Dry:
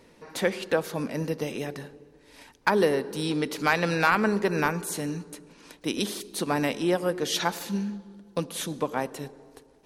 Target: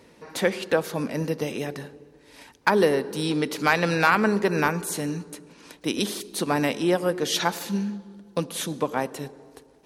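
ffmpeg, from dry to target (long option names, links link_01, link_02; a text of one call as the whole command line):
ffmpeg -i in.wav -af "highpass=49,volume=2.5dB" out.wav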